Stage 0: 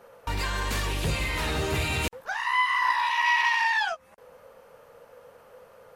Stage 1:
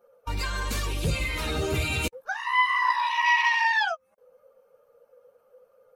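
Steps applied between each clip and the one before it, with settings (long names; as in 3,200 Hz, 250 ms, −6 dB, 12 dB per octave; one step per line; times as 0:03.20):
spectral dynamics exaggerated over time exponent 1.5
level +3 dB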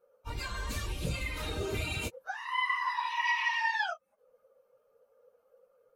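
random phases in long frames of 50 ms
level −7.5 dB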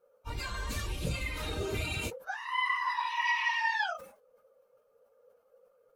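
level that may fall only so fast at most 110 dB per second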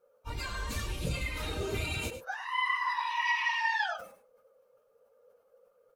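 single-tap delay 103 ms −11.5 dB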